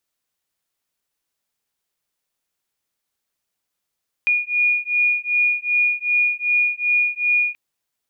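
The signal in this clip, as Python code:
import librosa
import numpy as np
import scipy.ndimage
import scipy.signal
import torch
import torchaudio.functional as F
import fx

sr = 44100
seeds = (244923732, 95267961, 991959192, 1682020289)

y = fx.two_tone_beats(sr, length_s=3.28, hz=2440.0, beat_hz=2.6, level_db=-19.5)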